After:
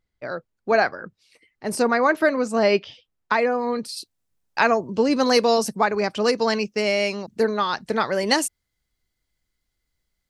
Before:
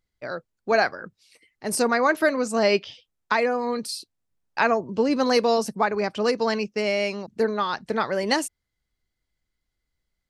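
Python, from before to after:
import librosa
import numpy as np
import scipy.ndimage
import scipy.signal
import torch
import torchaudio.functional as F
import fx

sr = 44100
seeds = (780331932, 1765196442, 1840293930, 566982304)

y = fx.high_shelf(x, sr, hz=4400.0, db=fx.steps((0.0, -8.0), (3.96, 5.0)))
y = y * librosa.db_to_amplitude(2.0)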